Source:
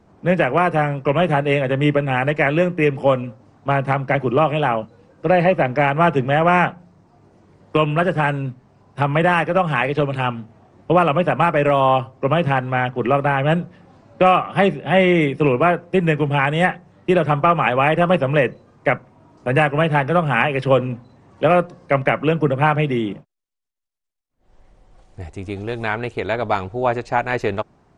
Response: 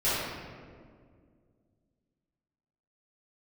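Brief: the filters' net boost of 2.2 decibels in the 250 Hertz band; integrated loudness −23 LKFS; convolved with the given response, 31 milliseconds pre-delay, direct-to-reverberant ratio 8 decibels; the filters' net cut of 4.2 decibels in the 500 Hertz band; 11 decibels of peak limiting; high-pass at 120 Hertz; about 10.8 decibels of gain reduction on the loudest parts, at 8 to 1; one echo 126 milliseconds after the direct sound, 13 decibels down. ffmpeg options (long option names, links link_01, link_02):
-filter_complex "[0:a]highpass=120,equalizer=frequency=250:width_type=o:gain=6.5,equalizer=frequency=500:width_type=o:gain=-7,acompressor=threshold=-23dB:ratio=8,alimiter=limit=-21.5dB:level=0:latency=1,aecho=1:1:126:0.224,asplit=2[link_01][link_02];[1:a]atrim=start_sample=2205,adelay=31[link_03];[link_02][link_03]afir=irnorm=-1:irlink=0,volume=-21dB[link_04];[link_01][link_04]amix=inputs=2:normalize=0,volume=8dB"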